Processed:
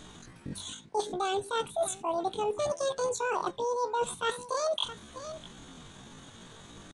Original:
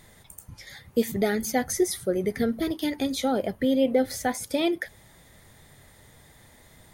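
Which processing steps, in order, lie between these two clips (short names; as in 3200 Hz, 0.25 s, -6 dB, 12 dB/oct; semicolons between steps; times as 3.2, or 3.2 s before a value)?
echo 0.641 s -22.5 dB; pitch shift +10.5 st; downsampling 22050 Hz; reverse; compressor 12:1, threshold -32 dBFS, peak gain reduction 15.5 dB; reverse; gain +5 dB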